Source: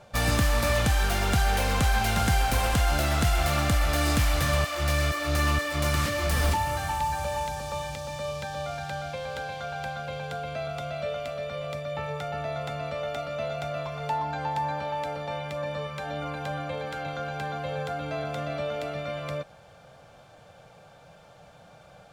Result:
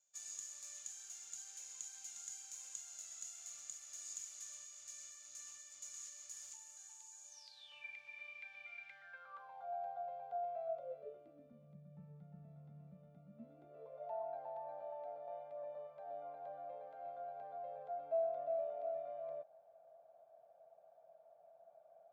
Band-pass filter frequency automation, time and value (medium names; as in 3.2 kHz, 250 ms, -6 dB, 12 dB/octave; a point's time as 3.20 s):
band-pass filter, Q 20
7.28 s 6.8 kHz
7.86 s 2.3 kHz
8.87 s 2.3 kHz
9.70 s 720 Hz
10.64 s 720 Hz
11.76 s 180 Hz
13.25 s 180 Hz
14.08 s 660 Hz